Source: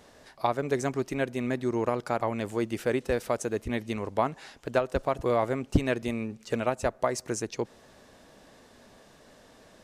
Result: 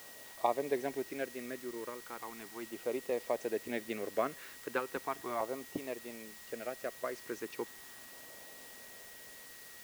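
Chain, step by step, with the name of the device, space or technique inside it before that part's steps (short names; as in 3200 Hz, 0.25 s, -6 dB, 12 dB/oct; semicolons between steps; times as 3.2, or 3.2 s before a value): shortwave radio (BPF 340–2700 Hz; tremolo 0.24 Hz, depth 68%; LFO notch saw down 0.37 Hz 480–1900 Hz; whine 1900 Hz -55 dBFS; white noise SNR 13 dB); gain -1.5 dB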